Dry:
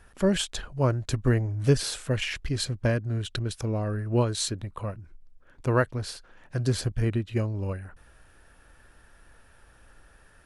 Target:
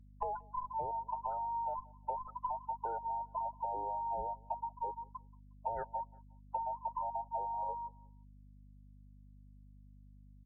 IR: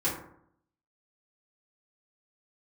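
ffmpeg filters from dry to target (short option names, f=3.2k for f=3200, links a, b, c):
-filter_complex "[0:a]afftfilt=real='real(if(between(b,1,1008),(2*floor((b-1)/48)+1)*48-b,b),0)':imag='imag(if(between(b,1,1008),(2*floor((b-1)/48)+1)*48-b,b),0)*if(between(b,1,1008),-1,1)':win_size=2048:overlap=0.75,agate=range=-27dB:threshold=-44dB:ratio=16:detection=peak,lowpass=f=1.3k:w=0.5412,lowpass=f=1.3k:w=1.3066,afftfilt=real='re*gte(hypot(re,im),0.0708)':imag='im*gte(hypot(re,im),0.0708)':win_size=1024:overlap=0.75,equalizer=f=310:t=o:w=3:g=-6.5,alimiter=limit=-23.5dB:level=0:latency=1:release=34,acompressor=threshold=-43dB:ratio=16,aeval=exprs='val(0)+0.000562*(sin(2*PI*50*n/s)+sin(2*PI*2*50*n/s)/2+sin(2*PI*3*50*n/s)/3+sin(2*PI*4*50*n/s)/4+sin(2*PI*5*50*n/s)/5)':c=same,asplit=2[a][b];[b]aecho=0:1:180|360:0.0631|0.0196[c];[a][c]amix=inputs=2:normalize=0,volume=8dB" -ar 22050 -c:a libvorbis -b:a 48k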